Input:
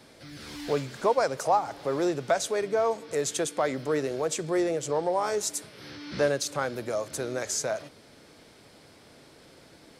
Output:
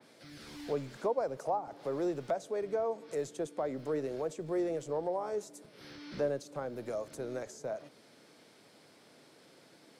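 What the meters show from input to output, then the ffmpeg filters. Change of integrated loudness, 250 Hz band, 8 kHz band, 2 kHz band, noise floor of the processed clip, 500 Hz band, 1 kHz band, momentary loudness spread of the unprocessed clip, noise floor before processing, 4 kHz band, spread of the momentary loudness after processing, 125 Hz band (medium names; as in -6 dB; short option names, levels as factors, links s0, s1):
-8.0 dB, -6.5 dB, -19.5 dB, -14.5 dB, -61 dBFS, -7.0 dB, -10.0 dB, 10 LU, -54 dBFS, -15.5 dB, 12 LU, -7.5 dB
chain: -filter_complex "[0:a]acrossover=split=120|850[s0][s1][s2];[s0]acrusher=bits=6:dc=4:mix=0:aa=0.000001[s3];[s2]acompressor=threshold=0.00708:ratio=6[s4];[s3][s1][s4]amix=inputs=3:normalize=0,adynamicequalizer=threshold=0.00447:dfrequency=3100:dqfactor=0.7:tfrequency=3100:tqfactor=0.7:attack=5:release=100:ratio=0.375:range=1.5:mode=cutabove:tftype=highshelf,volume=0.501"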